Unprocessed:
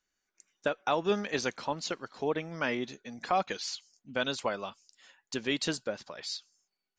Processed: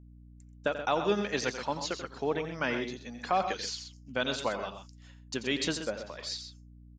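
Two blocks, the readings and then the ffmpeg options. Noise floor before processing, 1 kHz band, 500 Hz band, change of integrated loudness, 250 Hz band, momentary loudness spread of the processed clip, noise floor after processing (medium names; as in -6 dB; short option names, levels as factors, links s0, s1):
under -85 dBFS, +0.5 dB, +0.5 dB, +0.5 dB, +0.5 dB, 10 LU, -53 dBFS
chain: -af "aecho=1:1:87.46|128.3:0.282|0.316,agate=range=0.0224:threshold=0.002:ratio=3:detection=peak,aeval=exprs='val(0)+0.00282*(sin(2*PI*60*n/s)+sin(2*PI*2*60*n/s)/2+sin(2*PI*3*60*n/s)/3+sin(2*PI*4*60*n/s)/4+sin(2*PI*5*60*n/s)/5)':c=same"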